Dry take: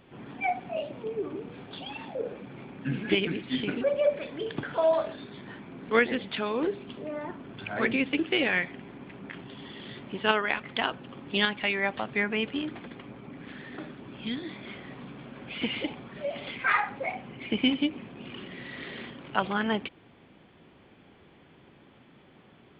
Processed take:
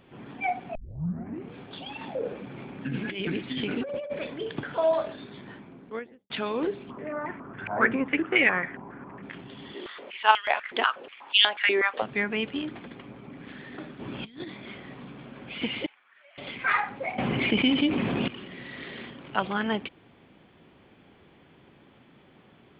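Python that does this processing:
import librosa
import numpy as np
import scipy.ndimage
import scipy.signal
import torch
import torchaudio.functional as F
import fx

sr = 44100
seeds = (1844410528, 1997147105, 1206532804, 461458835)

y = fx.over_compress(x, sr, threshold_db=-31.0, ratio=-1.0, at=(2.01, 4.34))
y = fx.studio_fade_out(y, sr, start_s=5.35, length_s=0.95)
y = fx.filter_held_lowpass(y, sr, hz=7.3, low_hz=970.0, high_hz=2100.0, at=(6.89, 9.21), fade=0.02)
y = fx.filter_held_highpass(y, sr, hz=8.2, low_hz=360.0, high_hz=3000.0, at=(9.74, 12.02))
y = fx.over_compress(y, sr, threshold_db=-40.0, ratio=-0.5, at=(13.99, 14.46), fade=0.02)
y = fx.ladder_bandpass(y, sr, hz=1900.0, resonance_pct=40, at=(15.86, 16.38))
y = fx.env_flatten(y, sr, amount_pct=70, at=(17.18, 18.28))
y = fx.edit(y, sr, fx.tape_start(start_s=0.75, length_s=0.76), tone=tone)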